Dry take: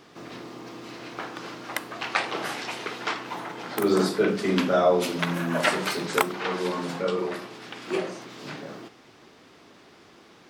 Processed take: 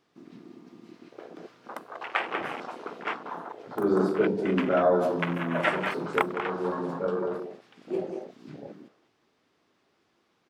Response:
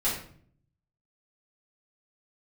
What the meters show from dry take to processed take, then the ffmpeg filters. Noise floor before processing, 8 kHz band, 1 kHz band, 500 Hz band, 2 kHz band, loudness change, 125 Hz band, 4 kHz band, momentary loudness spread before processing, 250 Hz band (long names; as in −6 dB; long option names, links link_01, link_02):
−53 dBFS, below −15 dB, −2.0 dB, −1.5 dB, −3.0 dB, −1.5 dB, −2.0 dB, −10.0 dB, 17 LU, −1.5 dB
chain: -filter_complex "[0:a]asplit=2[link_01][link_02];[link_02]adelay=190,highpass=300,lowpass=3400,asoftclip=type=hard:threshold=-13.5dB,volume=-6dB[link_03];[link_01][link_03]amix=inputs=2:normalize=0,afwtdn=0.0355,volume=-2dB"